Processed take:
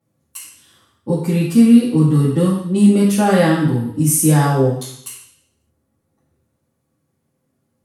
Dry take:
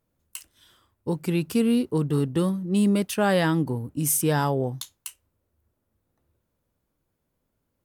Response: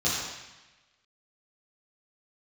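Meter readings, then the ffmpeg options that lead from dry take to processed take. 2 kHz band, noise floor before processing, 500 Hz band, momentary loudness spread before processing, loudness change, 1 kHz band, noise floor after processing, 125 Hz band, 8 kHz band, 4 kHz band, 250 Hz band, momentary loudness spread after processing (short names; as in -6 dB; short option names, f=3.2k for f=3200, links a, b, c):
+5.5 dB, -78 dBFS, +7.0 dB, 19 LU, +9.5 dB, +7.0 dB, -70 dBFS, +11.0 dB, +8.0 dB, +4.5 dB, +10.5 dB, 12 LU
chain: -filter_complex "[1:a]atrim=start_sample=2205,asetrate=70560,aresample=44100[a];[0:a][a]afir=irnorm=-1:irlink=0,volume=-2dB"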